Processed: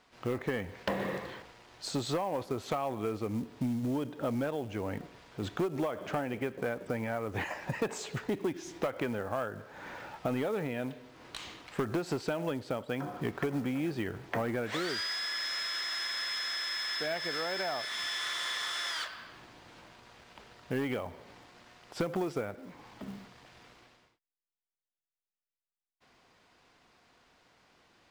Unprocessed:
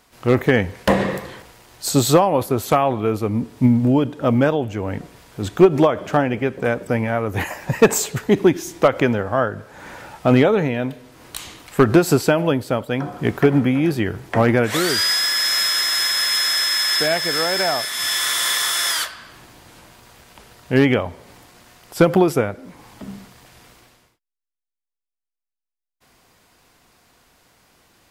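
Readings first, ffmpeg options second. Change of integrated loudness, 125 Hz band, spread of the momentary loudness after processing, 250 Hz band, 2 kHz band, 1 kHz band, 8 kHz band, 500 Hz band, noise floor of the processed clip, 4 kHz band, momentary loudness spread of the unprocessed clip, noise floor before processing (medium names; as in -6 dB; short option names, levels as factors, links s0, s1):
-16.5 dB, -17.5 dB, 14 LU, -16.5 dB, -13.5 dB, -15.0 dB, -21.0 dB, -16.5 dB, under -85 dBFS, -15.0 dB, 13 LU, -85 dBFS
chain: -af "asoftclip=type=tanh:threshold=0.422,lowshelf=f=140:g=-7,acompressor=threshold=0.0631:ratio=4,lowpass=4800,acrusher=bits=6:mode=log:mix=0:aa=0.000001,volume=0.473"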